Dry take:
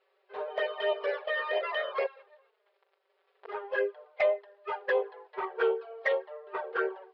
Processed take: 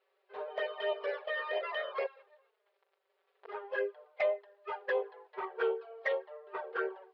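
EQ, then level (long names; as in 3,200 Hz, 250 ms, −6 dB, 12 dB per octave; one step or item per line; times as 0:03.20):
high-pass filter 47 Hz
−4.5 dB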